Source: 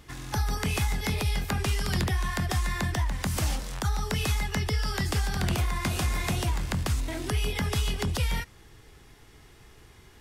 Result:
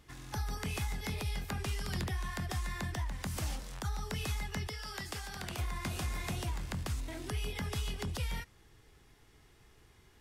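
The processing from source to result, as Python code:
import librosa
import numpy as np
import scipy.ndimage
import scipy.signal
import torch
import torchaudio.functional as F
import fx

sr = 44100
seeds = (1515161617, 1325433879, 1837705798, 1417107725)

y = fx.low_shelf(x, sr, hz=290.0, db=-10.0, at=(4.67, 5.59))
y = F.gain(torch.from_numpy(y), -9.0).numpy()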